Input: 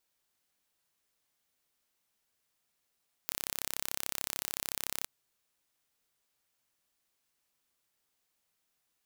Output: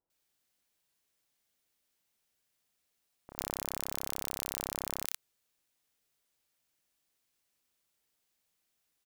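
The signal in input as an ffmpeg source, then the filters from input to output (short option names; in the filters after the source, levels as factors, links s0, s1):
-f lavfi -i "aevalsrc='0.447*eq(mod(n,1312),0)':d=1.78:s=44100"
-filter_complex "[0:a]acrossover=split=1100[s0][s1];[s1]adelay=100[s2];[s0][s2]amix=inputs=2:normalize=0"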